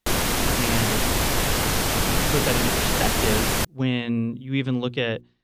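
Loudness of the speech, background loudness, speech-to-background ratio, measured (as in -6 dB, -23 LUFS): -27.0 LUFS, -22.0 LUFS, -5.0 dB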